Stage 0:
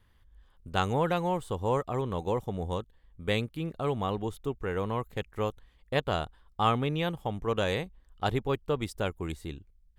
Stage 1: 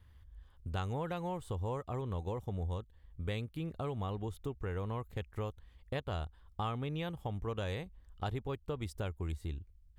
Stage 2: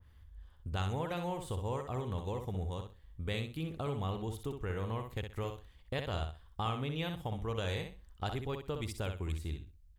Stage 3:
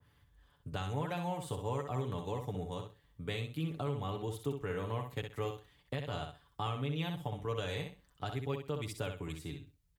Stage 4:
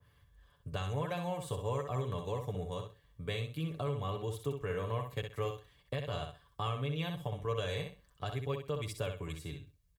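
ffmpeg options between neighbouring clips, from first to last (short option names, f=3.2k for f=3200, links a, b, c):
-af "equalizer=f=76:w=1.3:g=12.5,acompressor=threshold=-35dB:ratio=3,volume=-2dB"
-filter_complex "[0:a]asplit=2[a][b];[b]aecho=0:1:63|126|189:0.473|0.109|0.025[c];[a][c]amix=inputs=2:normalize=0,adynamicequalizer=threshold=0.00178:dfrequency=2000:dqfactor=0.7:tfrequency=2000:tqfactor=0.7:attack=5:release=100:ratio=0.375:range=2.5:mode=boostabove:tftype=highshelf"
-filter_complex "[0:a]highpass=97,aecho=1:1:6.9:0.6,acrossover=split=150[a][b];[b]alimiter=level_in=1.5dB:limit=-24dB:level=0:latency=1:release=354,volume=-1.5dB[c];[a][c]amix=inputs=2:normalize=0"
-af "aecho=1:1:1.8:0.42"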